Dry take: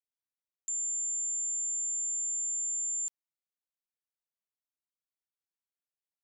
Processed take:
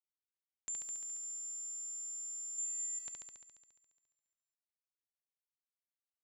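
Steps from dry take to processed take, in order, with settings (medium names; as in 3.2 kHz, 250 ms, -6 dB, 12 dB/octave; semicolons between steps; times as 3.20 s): 2.58–2.99 s: peaking EQ 6.6 kHz +5.5 dB 0.79 oct; in parallel at -1 dB: peak limiter -37 dBFS, peak gain reduction 12 dB; on the sum: crossover distortion -51.5 dBFS; distance through air 210 m; flutter echo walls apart 11.9 m, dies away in 1.5 s; on a send at -22.5 dB: reverberation RT60 1.0 s, pre-delay 3 ms; on the sum: trim +10.5 dB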